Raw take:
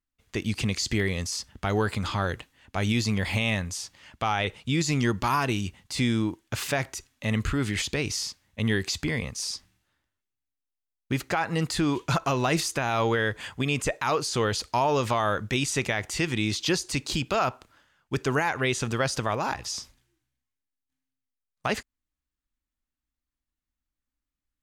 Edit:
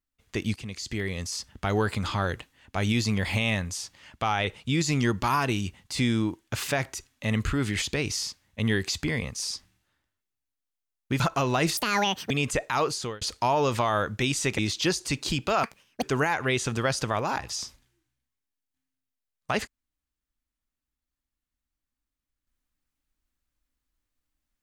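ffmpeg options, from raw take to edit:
ffmpeg -i in.wav -filter_complex "[0:a]asplit=9[link_01][link_02][link_03][link_04][link_05][link_06][link_07][link_08][link_09];[link_01]atrim=end=0.56,asetpts=PTS-STARTPTS,afade=type=out:start_time=0.556:duration=0.004:curve=hsin:silence=0.211349[link_10];[link_02]atrim=start=0.56:end=11.202,asetpts=PTS-STARTPTS,afade=type=in:duration=0.99:silence=0.211349[link_11];[link_03]atrim=start=12.098:end=12.674[link_12];[link_04]atrim=start=12.67:end=13.62,asetpts=PTS-STARTPTS,asetrate=78498,aresample=44100[link_13];[link_05]atrim=start=13.616:end=14.53,asetpts=PTS-STARTPTS,afade=type=out:start_time=0.594:duration=0.32[link_14];[link_06]atrim=start=14.53:end=15.902,asetpts=PTS-STARTPTS,afade=type=in:duration=0.004:curve=hsin[link_15];[link_07]atrim=start=16.418:end=17.474[link_16];[link_08]atrim=start=17.47:end=18.18,asetpts=PTS-STARTPTS,asetrate=79821,aresample=44100[link_17];[link_09]atrim=start=18.176[link_18];[link_10][link_11]concat=n=2:v=0:a=1[link_19];[link_19][link_12]acrossfade=duration=0.004:curve1=hsin:curve2=hsin[link_20];[link_20][link_13]acrossfade=duration=0.004:curve1=hsin:curve2=hsin[link_21];[link_14][link_15]concat=n=2:v=0:a=1[link_22];[link_21][link_22]acrossfade=duration=0.004:curve1=hsin:curve2=hsin[link_23];[link_23][link_16]acrossfade=duration=0.004:curve1=hsin:curve2=hsin[link_24];[link_24][link_17]acrossfade=duration=0.004:curve1=hsin:curve2=hsin[link_25];[link_25][link_18]acrossfade=duration=0.004:curve1=hsin:curve2=hsin" out.wav

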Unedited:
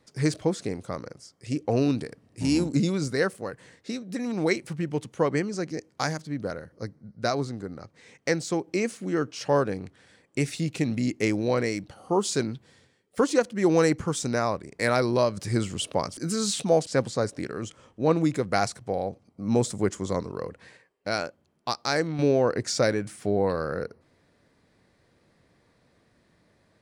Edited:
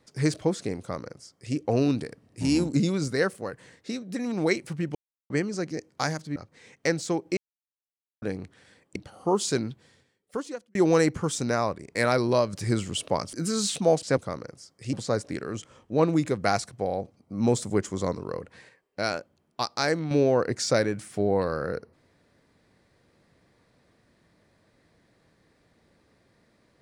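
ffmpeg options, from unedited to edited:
ffmpeg -i in.wav -filter_complex "[0:a]asplit=10[link_01][link_02][link_03][link_04][link_05][link_06][link_07][link_08][link_09][link_10];[link_01]atrim=end=4.95,asetpts=PTS-STARTPTS,afade=type=out:start_time=4.946:duration=0.004:curve=hsin[link_11];[link_02]atrim=start=4.95:end=5.3,asetpts=PTS-STARTPTS,volume=0[link_12];[link_03]atrim=start=5.3:end=6.362,asetpts=PTS-STARTPTS,afade=type=in:duration=0.004:curve=hsin[link_13];[link_04]atrim=start=7.778:end=8.79,asetpts=PTS-STARTPTS,afade=type=out:start_time=1.008:duration=0.004:curve=hsin[link_14];[link_05]atrim=start=8.79:end=9.64,asetpts=PTS-STARTPTS,volume=0[link_15];[link_06]atrim=start=9.64:end=10.382,asetpts=PTS-STARTPTS,afade=type=in:duration=0.004:curve=hsin[link_16];[link_07]atrim=start=11.798:end=13.59,asetpts=PTS-STARTPTS,afade=type=out:start_time=0.722:duration=1.07[link_17];[link_08]atrim=start=13.59:end=17.012,asetpts=PTS-STARTPTS,afade=type=in:duration=0.004:curve=hsin[link_18];[link_09]atrim=start=0.788:end=1.552[link_19];[link_10]atrim=start=17.008[link_20];[link_11][link_12][link_13]concat=n=3:v=0:a=1[link_21];[link_14][link_15][link_16]concat=n=3:v=0:a=1[link_22];[link_21][link_22]acrossfade=duration=0.004:curve1=hsin:curve2=hsin[link_23];[link_17][link_18]concat=n=2:v=0:a=1[link_24];[link_23][link_24]acrossfade=duration=0.004:curve1=hsin:curve2=hsin[link_25];[link_25][link_19]acrossfade=duration=0.004:curve1=hsin:curve2=hsin[link_26];[link_26][link_20]acrossfade=duration=0.004:curve1=hsin:curve2=hsin" out.wav

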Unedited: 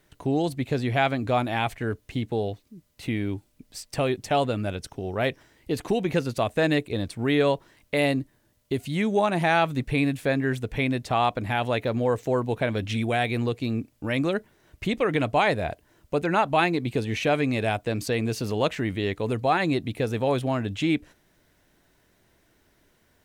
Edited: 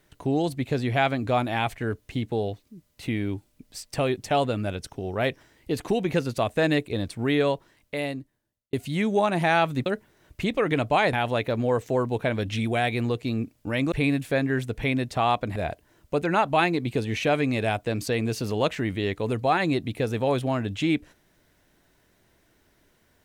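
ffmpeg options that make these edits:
ffmpeg -i in.wav -filter_complex "[0:a]asplit=6[link_01][link_02][link_03][link_04][link_05][link_06];[link_01]atrim=end=8.73,asetpts=PTS-STARTPTS,afade=type=out:start_time=7.22:duration=1.51[link_07];[link_02]atrim=start=8.73:end=9.862,asetpts=PTS-STARTPTS,afade=type=in:duration=0.004:curve=hsin[link_08];[link_03]atrim=start=14.288:end=15.562[link_09];[link_04]atrim=start=11.498:end=14.292[link_10];[link_05]atrim=start=9.858:end=11.502[link_11];[link_06]atrim=start=15.558[link_12];[link_07][link_08]concat=n=2:v=0:a=1[link_13];[link_13][link_09]acrossfade=duration=0.004:curve1=hsin:curve2=hsin[link_14];[link_14][link_10]acrossfade=duration=0.004:curve1=hsin:curve2=hsin[link_15];[link_15][link_11]acrossfade=duration=0.004:curve1=hsin:curve2=hsin[link_16];[link_16][link_12]acrossfade=duration=0.004:curve1=hsin:curve2=hsin" out.wav

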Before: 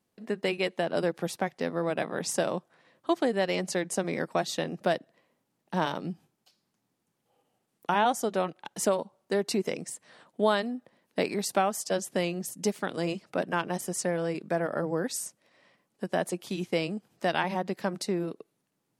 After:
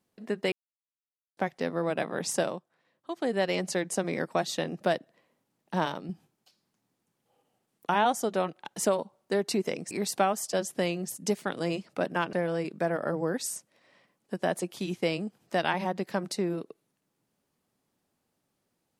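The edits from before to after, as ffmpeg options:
ffmpeg -i in.wav -filter_complex "[0:a]asplit=8[link_01][link_02][link_03][link_04][link_05][link_06][link_07][link_08];[link_01]atrim=end=0.52,asetpts=PTS-STARTPTS,afade=type=out:start_time=0.516:duration=0.004:curve=hsin[link_09];[link_02]atrim=start=0.52:end=1.37,asetpts=PTS-STARTPTS,volume=0[link_10];[link_03]atrim=start=1.37:end=2.6,asetpts=PTS-STARTPTS,afade=type=in:duration=0.004:curve=hsin,afade=type=out:start_time=1.06:duration=0.17:silence=0.316228[link_11];[link_04]atrim=start=2.6:end=3.16,asetpts=PTS-STARTPTS,volume=-10dB[link_12];[link_05]atrim=start=3.16:end=6.09,asetpts=PTS-STARTPTS,afade=type=in:duration=0.17:silence=0.316228,afade=type=out:start_time=2.64:duration=0.29:silence=0.473151[link_13];[link_06]atrim=start=6.09:end=9.912,asetpts=PTS-STARTPTS,afade=type=in:duration=0.004:curve=hsin:silence=0.473151[link_14];[link_07]atrim=start=11.278:end=13.702[link_15];[link_08]atrim=start=14.028[link_16];[link_09][link_10][link_11][link_12][link_13][link_14]concat=n=6:v=0:a=1[link_17];[link_17][link_15]acrossfade=duration=0.004:curve1=hsin:curve2=hsin[link_18];[link_18][link_16]acrossfade=duration=0.004:curve1=hsin:curve2=hsin" out.wav

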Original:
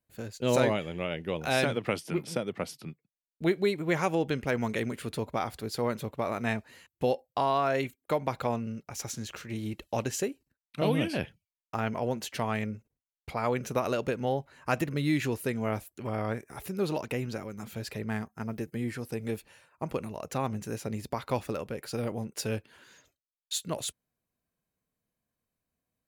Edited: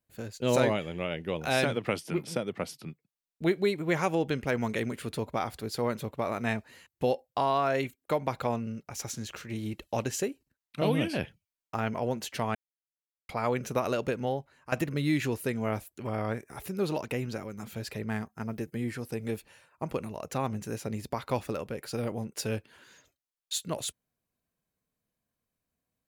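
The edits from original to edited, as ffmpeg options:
ffmpeg -i in.wav -filter_complex "[0:a]asplit=4[link_01][link_02][link_03][link_04];[link_01]atrim=end=12.55,asetpts=PTS-STARTPTS,afade=type=out:start_time=12.546:duration=0.004:curve=hsin[link_05];[link_02]atrim=start=12.55:end=13.29,asetpts=PTS-STARTPTS,volume=0[link_06];[link_03]atrim=start=13.29:end=14.72,asetpts=PTS-STARTPTS,afade=type=in:duration=0.004:curve=hsin,afade=type=out:start_time=0.9:duration=0.53:silence=0.211349[link_07];[link_04]atrim=start=14.72,asetpts=PTS-STARTPTS,afade=type=in:duration=0.004:curve=hsin:silence=0.211349[link_08];[link_05][link_06][link_07][link_08]concat=n=4:v=0:a=1" out.wav

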